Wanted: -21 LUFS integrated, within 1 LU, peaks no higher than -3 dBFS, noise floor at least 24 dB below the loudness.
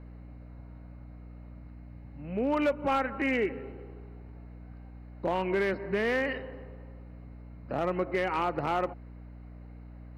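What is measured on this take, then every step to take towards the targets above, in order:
clipped 0.4%; flat tops at -20.5 dBFS; hum 60 Hz; harmonics up to 300 Hz; hum level -44 dBFS; loudness -30.0 LUFS; peak -20.5 dBFS; loudness target -21.0 LUFS
-> clip repair -20.5 dBFS; de-hum 60 Hz, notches 5; gain +9 dB

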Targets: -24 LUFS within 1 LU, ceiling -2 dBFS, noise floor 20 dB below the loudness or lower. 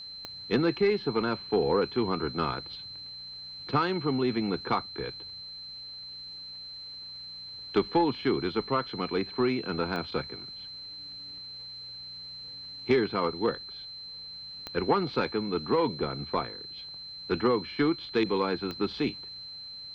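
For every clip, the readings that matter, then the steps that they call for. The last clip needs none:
clicks 4; steady tone 4100 Hz; tone level -40 dBFS; loudness -31.0 LUFS; peak -12.0 dBFS; loudness target -24.0 LUFS
-> de-click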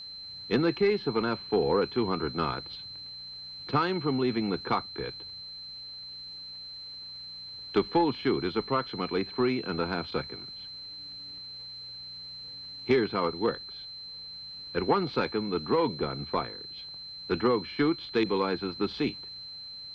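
clicks 0; steady tone 4100 Hz; tone level -40 dBFS
-> notch 4100 Hz, Q 30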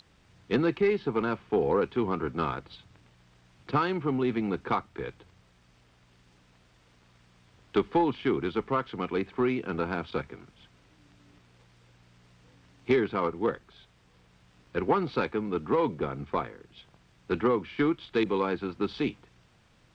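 steady tone none; loudness -29.5 LUFS; peak -12.5 dBFS; loudness target -24.0 LUFS
-> gain +5.5 dB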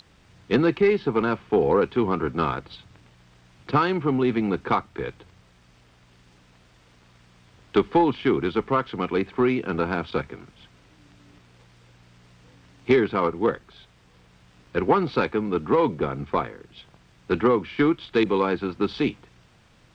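loudness -24.0 LUFS; peak -7.0 dBFS; noise floor -57 dBFS

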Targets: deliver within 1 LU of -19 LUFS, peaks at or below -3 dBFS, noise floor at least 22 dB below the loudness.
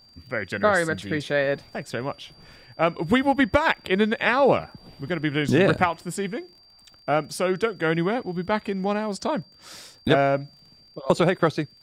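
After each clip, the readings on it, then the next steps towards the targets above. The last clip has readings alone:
ticks 42/s; steady tone 4700 Hz; tone level -52 dBFS; loudness -24.0 LUFS; peak -4.0 dBFS; loudness target -19.0 LUFS
-> de-click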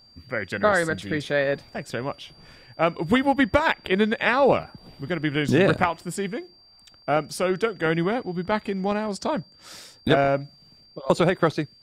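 ticks 0.085/s; steady tone 4700 Hz; tone level -52 dBFS
-> notch 4700 Hz, Q 30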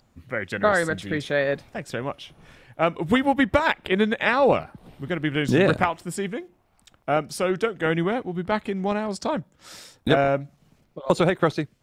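steady tone none; loudness -24.0 LUFS; peak -4.0 dBFS; loudness target -19.0 LUFS
-> gain +5 dB; limiter -3 dBFS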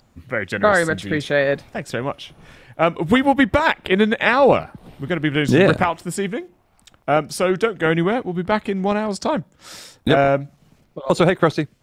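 loudness -19.0 LUFS; peak -3.0 dBFS; noise floor -59 dBFS

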